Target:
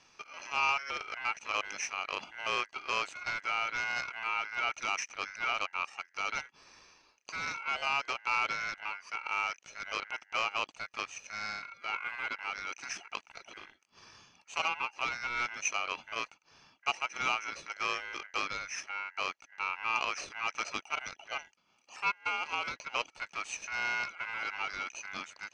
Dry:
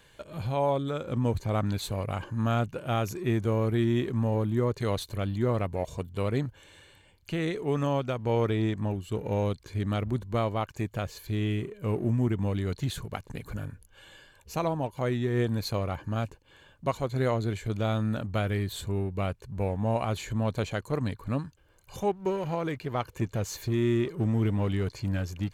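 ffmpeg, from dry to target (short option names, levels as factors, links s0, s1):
-af "aeval=exprs='0.158*(cos(1*acos(clip(val(0)/0.158,-1,1)))-cos(1*PI/2))+0.02*(cos(6*acos(clip(val(0)/0.158,-1,1)))-cos(6*PI/2))':c=same,highpass=440,equalizer=f=900:t=q:w=4:g=4,equalizer=f=1800:t=q:w=4:g=-8,equalizer=f=4400:t=q:w=4:g=10,lowpass=f=5000:w=0.5412,lowpass=f=5000:w=1.3066,aeval=exprs='val(0)*sin(2*PI*1800*n/s)':c=same"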